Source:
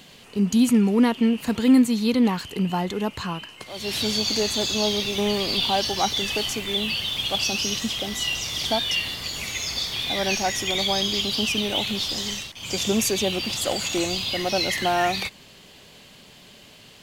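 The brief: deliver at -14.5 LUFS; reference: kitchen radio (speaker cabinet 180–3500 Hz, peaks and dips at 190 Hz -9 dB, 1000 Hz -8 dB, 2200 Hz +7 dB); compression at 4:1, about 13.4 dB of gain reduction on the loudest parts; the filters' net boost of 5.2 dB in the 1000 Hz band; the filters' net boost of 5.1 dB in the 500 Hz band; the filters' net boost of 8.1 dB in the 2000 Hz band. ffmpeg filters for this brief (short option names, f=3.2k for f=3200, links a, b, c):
-af "equalizer=f=500:t=o:g=5,equalizer=f=1k:t=o:g=7.5,equalizer=f=2k:t=o:g=4.5,acompressor=threshold=-28dB:ratio=4,highpass=180,equalizer=f=190:t=q:w=4:g=-9,equalizer=f=1k:t=q:w=4:g=-8,equalizer=f=2.2k:t=q:w=4:g=7,lowpass=f=3.5k:w=0.5412,lowpass=f=3.5k:w=1.3066,volume=15.5dB"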